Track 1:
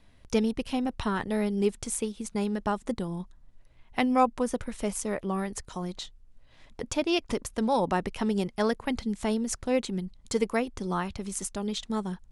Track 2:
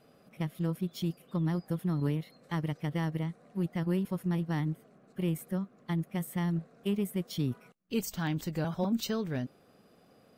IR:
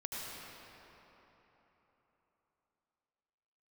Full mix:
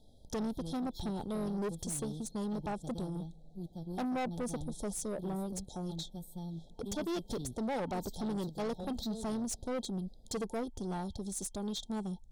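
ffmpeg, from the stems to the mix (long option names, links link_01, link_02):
-filter_complex "[0:a]bandreject=frequency=4800:width=28,volume=-2.5dB[link_01];[1:a]equalizer=frequency=4000:width_type=o:width=0.32:gain=9.5,volume=-11dB,asplit=2[link_02][link_03];[link_03]volume=-21.5dB[link_04];[2:a]atrim=start_sample=2205[link_05];[link_04][link_05]afir=irnorm=-1:irlink=0[link_06];[link_01][link_02][link_06]amix=inputs=3:normalize=0,afftfilt=real='re*(1-between(b*sr/4096,900,3200))':imag='im*(1-between(b*sr/4096,900,3200))':win_size=4096:overlap=0.75,asoftclip=type=tanh:threshold=-32dB"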